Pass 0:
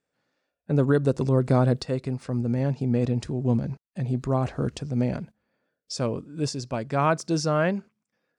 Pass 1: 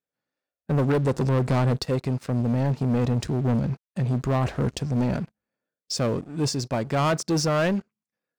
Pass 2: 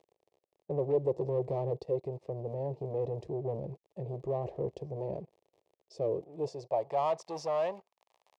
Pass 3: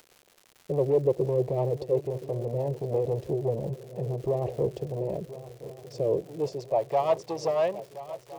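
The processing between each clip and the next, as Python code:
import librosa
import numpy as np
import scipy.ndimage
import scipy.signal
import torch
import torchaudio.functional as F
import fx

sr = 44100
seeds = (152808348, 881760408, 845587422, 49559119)

y1 = fx.leveller(x, sr, passes=3)
y1 = y1 * librosa.db_to_amplitude(-6.0)
y2 = fx.dmg_crackle(y1, sr, seeds[0], per_s=31.0, level_db=-32.0)
y2 = fx.fixed_phaser(y2, sr, hz=600.0, stages=4)
y2 = fx.filter_sweep_bandpass(y2, sr, from_hz=370.0, to_hz=1000.0, start_s=6.15, end_s=7.13, q=1.5)
y3 = fx.rotary(y2, sr, hz=6.0)
y3 = fx.dmg_crackle(y3, sr, seeds[1], per_s=230.0, level_db=-49.0)
y3 = fx.echo_swing(y3, sr, ms=1363, ratio=3, feedback_pct=41, wet_db=-15.5)
y3 = y3 * librosa.db_to_amplitude(8.0)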